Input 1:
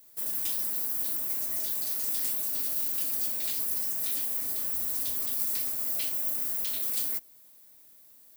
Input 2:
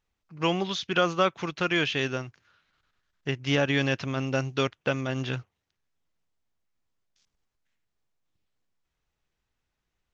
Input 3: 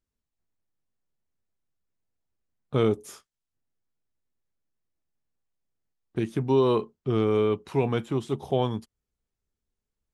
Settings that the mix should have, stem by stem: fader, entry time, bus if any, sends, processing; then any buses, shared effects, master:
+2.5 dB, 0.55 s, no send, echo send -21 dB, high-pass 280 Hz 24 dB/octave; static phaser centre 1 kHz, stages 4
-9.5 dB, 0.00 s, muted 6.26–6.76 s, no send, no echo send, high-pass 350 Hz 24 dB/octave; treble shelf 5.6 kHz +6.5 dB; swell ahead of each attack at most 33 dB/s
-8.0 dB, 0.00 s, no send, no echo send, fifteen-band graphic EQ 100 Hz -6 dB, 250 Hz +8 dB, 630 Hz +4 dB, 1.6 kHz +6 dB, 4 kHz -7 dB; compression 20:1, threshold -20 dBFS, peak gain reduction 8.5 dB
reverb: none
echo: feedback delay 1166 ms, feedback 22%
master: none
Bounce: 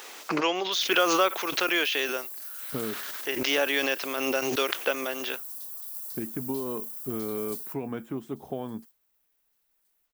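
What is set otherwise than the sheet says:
stem 1 +2.5 dB -> -8.5 dB; stem 2 -9.5 dB -> 0.0 dB

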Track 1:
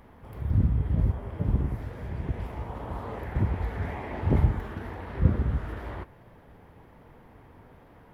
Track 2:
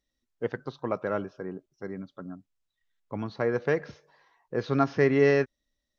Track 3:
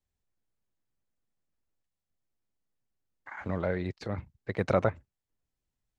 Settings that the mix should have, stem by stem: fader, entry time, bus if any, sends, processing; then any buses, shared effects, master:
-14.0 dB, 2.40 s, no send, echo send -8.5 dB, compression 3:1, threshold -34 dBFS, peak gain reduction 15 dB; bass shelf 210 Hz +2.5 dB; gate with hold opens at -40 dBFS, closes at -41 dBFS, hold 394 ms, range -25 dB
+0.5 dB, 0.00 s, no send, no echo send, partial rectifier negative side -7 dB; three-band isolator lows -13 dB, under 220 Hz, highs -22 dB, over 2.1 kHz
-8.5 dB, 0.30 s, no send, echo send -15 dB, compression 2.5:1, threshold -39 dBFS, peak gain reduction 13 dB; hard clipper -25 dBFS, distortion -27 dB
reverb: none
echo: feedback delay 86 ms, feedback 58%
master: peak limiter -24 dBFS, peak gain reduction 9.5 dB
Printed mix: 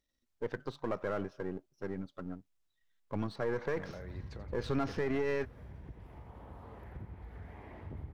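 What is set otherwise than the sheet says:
stem 1: entry 2.40 s -> 3.60 s; stem 2: missing three-band isolator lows -13 dB, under 220 Hz, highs -22 dB, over 2.1 kHz

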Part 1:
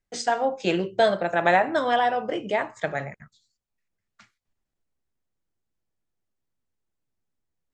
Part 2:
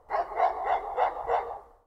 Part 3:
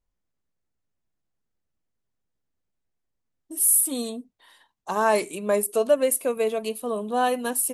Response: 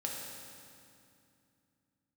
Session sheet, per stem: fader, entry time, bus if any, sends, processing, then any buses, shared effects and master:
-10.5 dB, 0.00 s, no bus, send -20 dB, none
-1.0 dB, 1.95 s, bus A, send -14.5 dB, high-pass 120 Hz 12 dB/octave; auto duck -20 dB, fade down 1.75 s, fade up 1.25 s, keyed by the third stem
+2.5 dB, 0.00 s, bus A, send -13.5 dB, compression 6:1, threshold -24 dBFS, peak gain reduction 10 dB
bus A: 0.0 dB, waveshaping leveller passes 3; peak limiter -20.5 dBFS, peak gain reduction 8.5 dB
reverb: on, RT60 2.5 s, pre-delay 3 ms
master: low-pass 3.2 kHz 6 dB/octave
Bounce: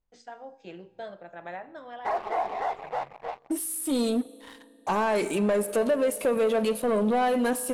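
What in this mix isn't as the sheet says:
stem 1 -10.5 dB -> -20.0 dB; stem 2: send off

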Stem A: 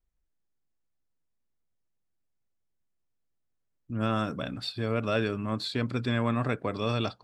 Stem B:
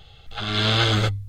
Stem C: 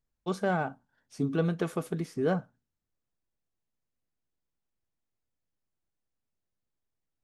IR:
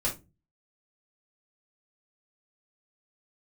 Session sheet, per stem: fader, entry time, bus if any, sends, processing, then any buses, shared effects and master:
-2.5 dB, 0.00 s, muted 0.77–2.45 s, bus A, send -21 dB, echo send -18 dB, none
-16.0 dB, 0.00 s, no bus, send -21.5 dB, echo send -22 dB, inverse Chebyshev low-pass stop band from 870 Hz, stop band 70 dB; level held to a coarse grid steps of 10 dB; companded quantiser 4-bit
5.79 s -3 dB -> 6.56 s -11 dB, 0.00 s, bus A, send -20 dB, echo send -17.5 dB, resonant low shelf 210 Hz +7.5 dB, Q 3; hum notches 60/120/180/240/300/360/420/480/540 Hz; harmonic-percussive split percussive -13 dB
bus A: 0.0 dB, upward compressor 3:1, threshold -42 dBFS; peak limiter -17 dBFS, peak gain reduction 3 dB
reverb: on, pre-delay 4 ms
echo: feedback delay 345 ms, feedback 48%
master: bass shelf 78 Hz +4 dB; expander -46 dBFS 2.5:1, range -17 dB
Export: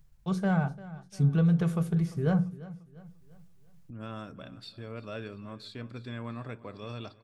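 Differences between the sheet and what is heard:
stem A -2.5 dB -> -13.0 dB; stem B: muted; stem C: missing harmonic-percussive split percussive -13 dB

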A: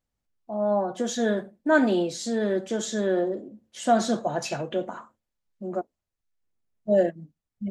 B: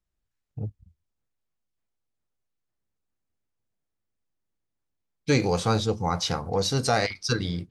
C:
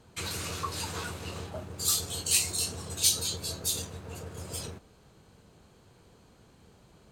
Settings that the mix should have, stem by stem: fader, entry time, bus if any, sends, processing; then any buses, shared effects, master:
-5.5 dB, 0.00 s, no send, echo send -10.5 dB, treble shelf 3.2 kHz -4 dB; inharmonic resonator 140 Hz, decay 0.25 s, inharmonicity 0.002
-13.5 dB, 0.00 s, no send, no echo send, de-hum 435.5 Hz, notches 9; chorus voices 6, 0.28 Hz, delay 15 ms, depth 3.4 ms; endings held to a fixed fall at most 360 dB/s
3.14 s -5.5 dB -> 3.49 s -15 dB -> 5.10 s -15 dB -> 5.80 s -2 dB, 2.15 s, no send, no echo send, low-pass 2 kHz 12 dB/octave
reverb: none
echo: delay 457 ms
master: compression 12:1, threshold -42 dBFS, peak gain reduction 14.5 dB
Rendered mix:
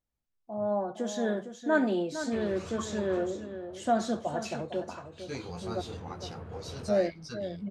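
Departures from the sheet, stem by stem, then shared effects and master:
stem A: missing inharmonic resonator 140 Hz, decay 0.25 s, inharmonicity 0.002; master: missing compression 12:1, threshold -42 dBFS, peak gain reduction 14.5 dB

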